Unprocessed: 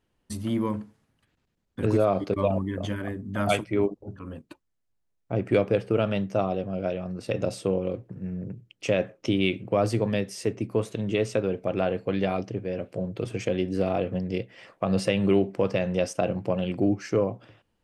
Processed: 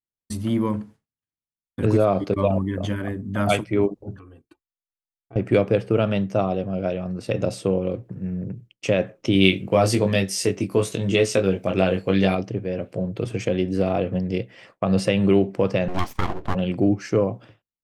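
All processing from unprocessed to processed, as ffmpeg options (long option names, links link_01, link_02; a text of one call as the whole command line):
ffmpeg -i in.wav -filter_complex "[0:a]asettb=1/sr,asplit=3[link_01][link_02][link_03];[link_01]atrim=end=4.184[link_04];[link_02]atrim=start=4.18:end=5.36,asetpts=PTS-STARTPTS,afade=type=in:duration=0.004:curve=qsin,afade=type=out:start_time=1.176:duration=0.004:curve=qsin,aecho=1:1:2.6:0.8,atrim=end_sample=52038,acompressor=threshold=-47dB:ratio=4:attack=3.2:release=140:knee=1:detection=peak[link_05];[link_03]atrim=start=5.356[link_06];[link_04][link_05]acrossfade=duration=0.004:curve1=hsin:curve2=qsin[link_07];[link_07][link_06]acrossfade=duration=0.004:curve1=qsin:curve2=hsin,asettb=1/sr,asplit=3[link_08][link_09][link_10];[link_08]atrim=end=9.334[link_11];[link_09]atrim=start=9.33:end=12.35,asetpts=PTS-STARTPTS,afade=type=in:duration=0.004:curve=qsin,afade=type=out:start_time=3.016:duration=0.004:curve=qsin,highshelf=frequency=2700:gain=9.5,asplit=2[link_12][link_13];[link_13]adelay=21,volume=-4.5dB[link_14];[link_12][link_14]amix=inputs=2:normalize=0,atrim=end_sample=133182[link_15];[link_10]atrim=start=12.346[link_16];[link_11][link_15]acrossfade=duration=0.004:curve1=hsin:curve2=qsin[link_17];[link_17][link_16]acrossfade=duration=0.004:curve1=qsin:curve2=hsin,asettb=1/sr,asplit=3[link_18][link_19][link_20];[link_18]atrim=end=15.884[link_21];[link_19]atrim=start=15.88:end=16.55,asetpts=PTS-STARTPTS,afade=type=in:duration=0.004:curve=qsin,afade=type=out:start_time=0.666:duration=0.004:curve=qsin,highpass=frequency=130:width=0.5412,highpass=frequency=130:width=1.3066,highshelf=frequency=6100:gain=-11.5,aeval=exprs='abs(val(0))':channel_layout=same[link_22];[link_20]atrim=start=16.546[link_23];[link_21][link_22]acrossfade=duration=0.004:curve1=hsin:curve2=qsin[link_24];[link_24][link_23]acrossfade=duration=0.004:curve1=qsin:curve2=hsin,agate=range=-33dB:threshold=-45dB:ratio=3:detection=peak,equalizer=frequency=130:width_type=o:width=1.9:gain=2.5,volume=3dB" out.wav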